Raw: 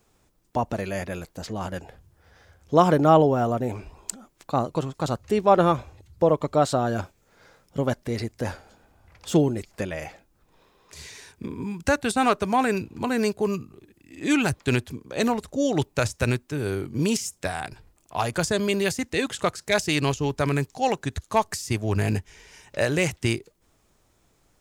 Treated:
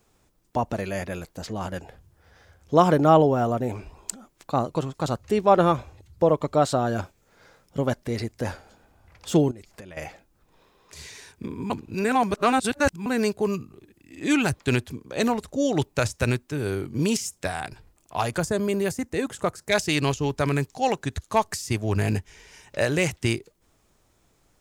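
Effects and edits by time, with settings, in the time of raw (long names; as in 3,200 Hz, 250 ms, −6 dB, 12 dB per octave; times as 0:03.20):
0:09.51–0:09.97: downward compressor 16 to 1, threshold −38 dBFS
0:11.70–0:13.06: reverse
0:18.39–0:19.69: parametric band 3,500 Hz −10 dB 1.9 octaves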